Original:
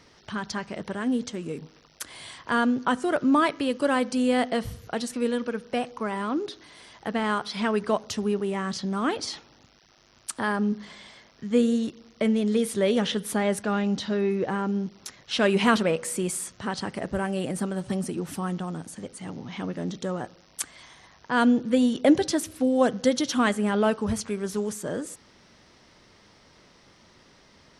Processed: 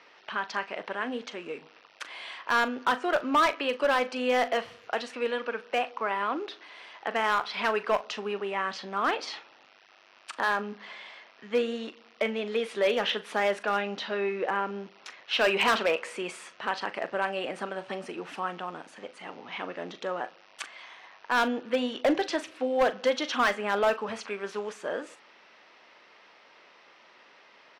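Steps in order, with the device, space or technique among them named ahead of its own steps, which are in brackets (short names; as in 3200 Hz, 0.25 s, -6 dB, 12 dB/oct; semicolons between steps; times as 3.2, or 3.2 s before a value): megaphone (BPF 590–2900 Hz; bell 2600 Hz +5.5 dB 0.33 oct; hard clip -21.5 dBFS, distortion -12 dB; doubler 40 ms -13.5 dB); gain +3.5 dB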